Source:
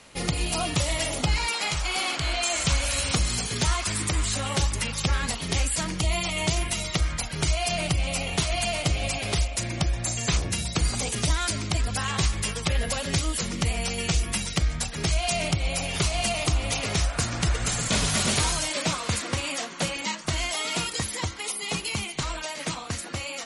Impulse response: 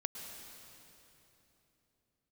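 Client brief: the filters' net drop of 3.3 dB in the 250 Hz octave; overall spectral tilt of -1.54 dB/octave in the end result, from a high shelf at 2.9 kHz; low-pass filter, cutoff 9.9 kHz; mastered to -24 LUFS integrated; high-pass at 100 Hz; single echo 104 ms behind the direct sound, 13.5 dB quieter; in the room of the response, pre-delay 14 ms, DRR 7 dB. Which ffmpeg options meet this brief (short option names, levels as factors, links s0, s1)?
-filter_complex "[0:a]highpass=100,lowpass=9900,equalizer=f=250:t=o:g=-5,highshelf=f=2900:g=6,aecho=1:1:104:0.211,asplit=2[s0][s1];[1:a]atrim=start_sample=2205,adelay=14[s2];[s1][s2]afir=irnorm=-1:irlink=0,volume=0.447[s3];[s0][s3]amix=inputs=2:normalize=0,volume=0.944"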